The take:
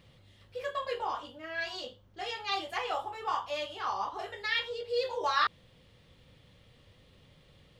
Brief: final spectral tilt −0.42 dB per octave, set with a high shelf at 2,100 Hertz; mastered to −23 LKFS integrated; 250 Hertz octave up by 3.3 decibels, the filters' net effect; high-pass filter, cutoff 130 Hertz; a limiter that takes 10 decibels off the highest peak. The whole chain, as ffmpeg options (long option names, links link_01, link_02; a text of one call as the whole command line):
ffmpeg -i in.wav -af "highpass=130,equalizer=frequency=250:width_type=o:gain=5.5,highshelf=frequency=2100:gain=-8.5,volume=15dB,alimiter=limit=-12dB:level=0:latency=1" out.wav